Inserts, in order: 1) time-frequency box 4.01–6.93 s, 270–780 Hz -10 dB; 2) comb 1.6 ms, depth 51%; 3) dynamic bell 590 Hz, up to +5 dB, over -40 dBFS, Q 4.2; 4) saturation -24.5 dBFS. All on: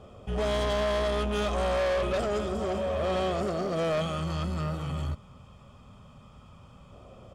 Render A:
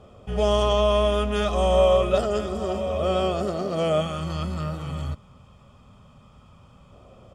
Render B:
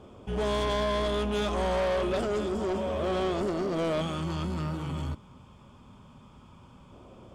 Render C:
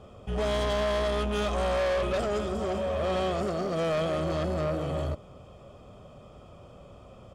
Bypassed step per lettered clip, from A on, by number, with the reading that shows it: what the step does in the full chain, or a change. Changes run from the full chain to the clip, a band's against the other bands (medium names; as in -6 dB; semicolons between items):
4, distortion -8 dB; 2, 250 Hz band +3.0 dB; 1, momentary loudness spread change -1 LU